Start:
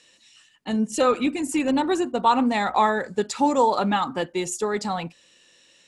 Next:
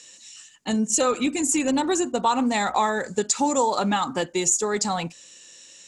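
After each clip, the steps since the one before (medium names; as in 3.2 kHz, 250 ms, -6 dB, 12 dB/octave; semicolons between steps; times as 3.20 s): peaking EQ 6.9 kHz +14.5 dB 0.79 oct; compression 2:1, threshold -24 dBFS, peak gain reduction 6.5 dB; trim +2.5 dB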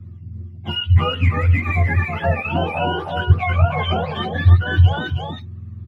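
spectrum inverted on a logarithmic axis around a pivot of 790 Hz; delay 320 ms -3.5 dB; trim +1 dB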